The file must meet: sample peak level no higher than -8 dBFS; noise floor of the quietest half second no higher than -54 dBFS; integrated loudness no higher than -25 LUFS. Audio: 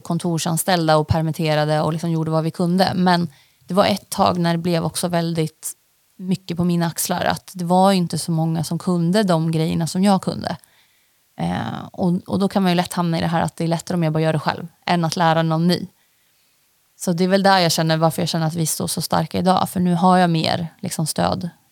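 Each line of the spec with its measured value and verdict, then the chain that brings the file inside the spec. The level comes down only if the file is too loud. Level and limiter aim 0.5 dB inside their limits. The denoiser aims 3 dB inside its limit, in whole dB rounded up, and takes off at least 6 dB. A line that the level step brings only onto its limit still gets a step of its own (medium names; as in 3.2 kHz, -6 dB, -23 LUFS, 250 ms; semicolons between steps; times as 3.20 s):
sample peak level -2.0 dBFS: fail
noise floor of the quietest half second -61 dBFS: pass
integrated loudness -19.5 LUFS: fail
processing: trim -6 dB; peak limiter -8.5 dBFS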